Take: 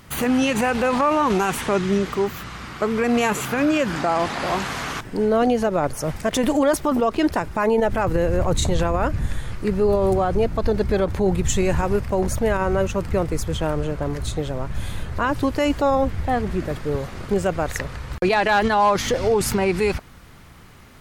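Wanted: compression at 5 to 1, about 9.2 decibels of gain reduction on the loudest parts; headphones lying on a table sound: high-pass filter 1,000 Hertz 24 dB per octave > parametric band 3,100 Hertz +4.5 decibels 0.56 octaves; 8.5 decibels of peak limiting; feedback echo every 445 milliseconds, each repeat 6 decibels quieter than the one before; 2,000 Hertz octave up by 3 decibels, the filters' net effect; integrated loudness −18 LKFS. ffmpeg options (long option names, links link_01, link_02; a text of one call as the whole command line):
ffmpeg -i in.wav -af "equalizer=frequency=2000:width_type=o:gain=3,acompressor=threshold=-24dB:ratio=5,alimiter=limit=-20.5dB:level=0:latency=1,highpass=frequency=1000:width=0.5412,highpass=frequency=1000:width=1.3066,equalizer=frequency=3100:width_type=o:width=0.56:gain=4.5,aecho=1:1:445|890|1335|1780|2225|2670:0.501|0.251|0.125|0.0626|0.0313|0.0157,volume=16dB" out.wav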